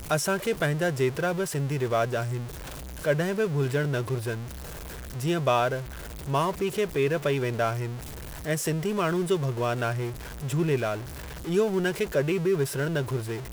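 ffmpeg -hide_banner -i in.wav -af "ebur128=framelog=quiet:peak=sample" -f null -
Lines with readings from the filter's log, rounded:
Integrated loudness:
  I:         -27.5 LUFS
  Threshold: -37.8 LUFS
Loudness range:
  LRA:         1.4 LU
  Threshold: -48.1 LUFS
  LRA low:   -28.8 LUFS
  LRA high:  -27.4 LUFS
Sample peak:
  Peak:      -11.2 dBFS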